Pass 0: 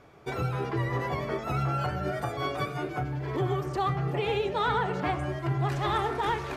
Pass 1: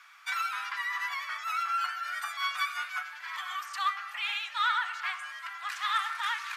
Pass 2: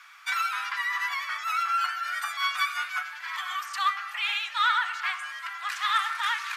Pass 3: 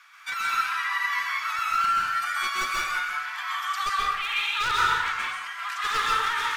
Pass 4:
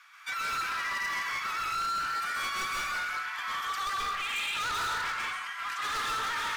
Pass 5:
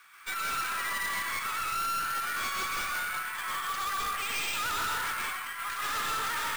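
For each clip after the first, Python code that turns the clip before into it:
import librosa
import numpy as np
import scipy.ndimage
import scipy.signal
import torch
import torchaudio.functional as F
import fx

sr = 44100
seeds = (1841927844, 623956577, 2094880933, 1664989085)

y1 = scipy.signal.sosfilt(scipy.signal.butter(6, 1200.0, 'highpass', fs=sr, output='sos'), x)
y1 = fx.rider(y1, sr, range_db=10, speed_s=2.0)
y1 = y1 * librosa.db_to_amplitude(4.0)
y2 = fx.peak_eq(y1, sr, hz=450.0, db=-3.5, octaves=1.5)
y2 = y2 * librosa.db_to_amplitude(4.5)
y3 = np.minimum(y2, 2.0 * 10.0 ** (-21.0 / 20.0) - y2)
y3 = fx.rev_plate(y3, sr, seeds[0], rt60_s=0.94, hf_ratio=0.75, predelay_ms=115, drr_db=-4.5)
y3 = y3 * librosa.db_to_amplitude(-3.0)
y4 = np.clip(y3, -10.0 ** (-27.0 / 20.0), 10.0 ** (-27.0 / 20.0))
y4 = y4 * librosa.db_to_amplitude(-2.5)
y5 = fx.tracing_dist(y4, sr, depth_ms=0.071)
y5 = np.repeat(y5[::4], 4)[:len(y5)]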